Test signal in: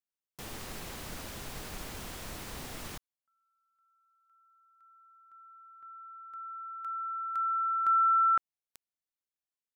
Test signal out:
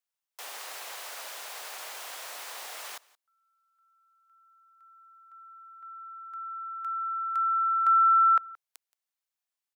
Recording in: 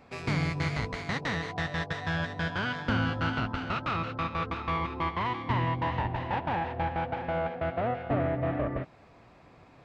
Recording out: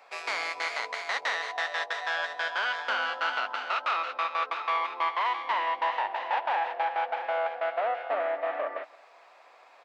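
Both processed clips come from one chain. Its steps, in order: HPF 590 Hz 24 dB/oct; on a send: echo 0.174 s -23 dB; on the sum: gain +4 dB

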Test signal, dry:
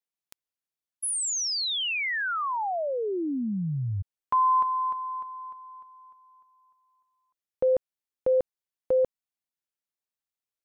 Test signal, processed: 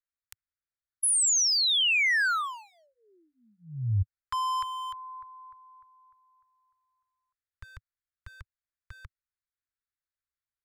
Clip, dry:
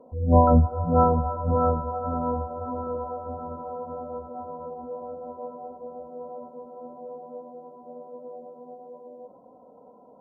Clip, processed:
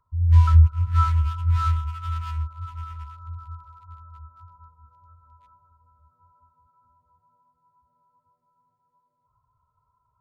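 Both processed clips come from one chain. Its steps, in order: Wiener smoothing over 15 samples; inverse Chebyshev band-stop 180–790 Hz, stop band 40 dB; gain +7 dB

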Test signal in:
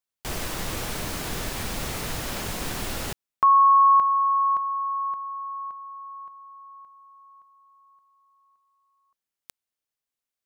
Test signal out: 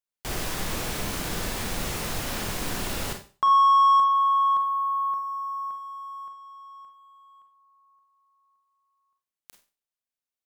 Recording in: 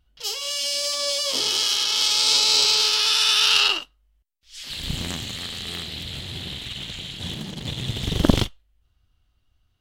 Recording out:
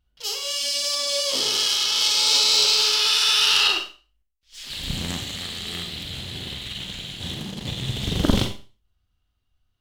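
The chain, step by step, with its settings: sample leveller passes 1; Schroeder reverb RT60 0.35 s, combs from 31 ms, DRR 4.5 dB; gain -4.5 dB

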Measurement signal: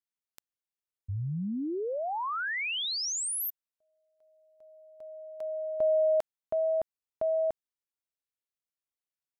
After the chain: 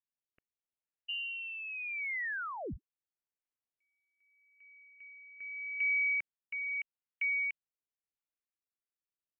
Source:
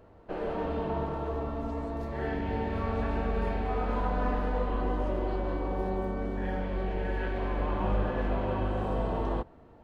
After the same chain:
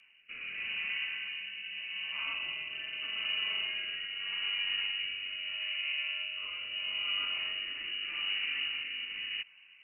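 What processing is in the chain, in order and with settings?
limiter -23 dBFS; inverted band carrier 2900 Hz; rotary speaker horn 0.8 Hz; gain -3.5 dB

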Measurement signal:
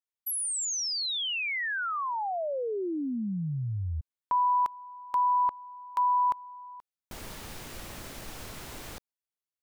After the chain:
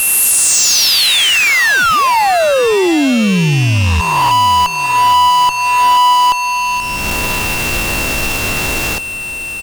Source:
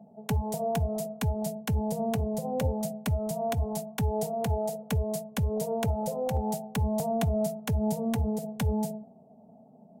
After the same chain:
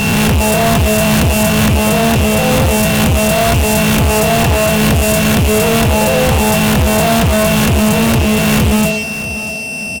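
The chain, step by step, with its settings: spectral swells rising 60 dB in 1.28 s; whine 2700 Hz -37 dBFS; fuzz box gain 33 dB, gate -43 dBFS; on a send: feedback echo 0.641 s, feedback 36%, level -14 dB; on the sum: gain +4 dB

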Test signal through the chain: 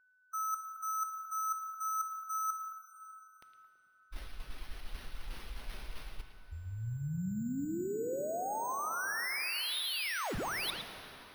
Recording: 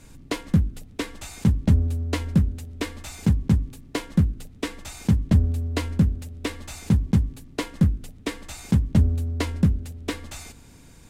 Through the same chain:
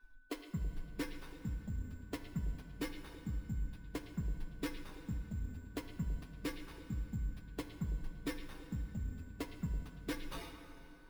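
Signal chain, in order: per-bin expansion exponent 2; low shelf 210 Hz +11 dB; reverse; compressor 6:1, threshold -36 dBFS; reverse; bell 86 Hz -6.5 dB 0.75 oct; careless resampling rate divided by 6×, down none, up hold; plate-style reverb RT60 3.8 s, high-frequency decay 0.7×, DRR 7.5 dB; whine 1500 Hz -66 dBFS; on a send: delay with a stepping band-pass 0.11 s, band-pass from 3100 Hz, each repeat -1.4 oct, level -7 dB; on the sum: gain -1 dB

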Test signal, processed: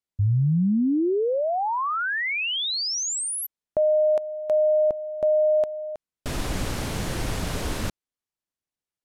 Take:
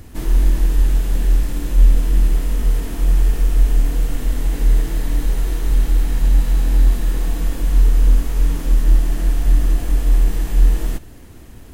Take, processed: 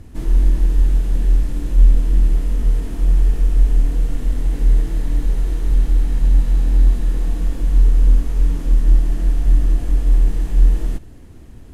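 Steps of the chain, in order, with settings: Bessel low-pass 11000 Hz, order 4; low shelf 500 Hz +7 dB; gain -6.5 dB

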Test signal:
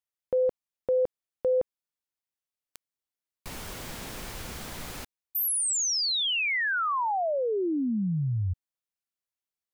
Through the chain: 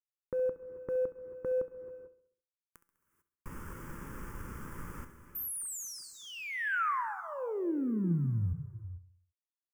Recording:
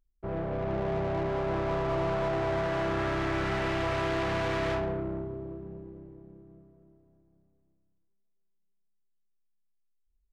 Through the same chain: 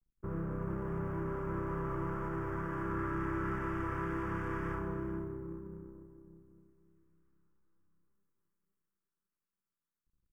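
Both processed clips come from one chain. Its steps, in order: G.711 law mismatch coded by A; resonant high shelf 1700 Hz -10 dB, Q 1.5; in parallel at +1 dB: compressor, threshold -35 dBFS; on the sum: fixed phaser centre 1700 Hz, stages 4; resonator 170 Hz, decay 0.36 s, harmonics all, mix 50%; on a send: feedback echo 67 ms, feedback 54%, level -15 dB; on the sum: non-linear reverb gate 0.47 s rising, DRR 11.5 dB

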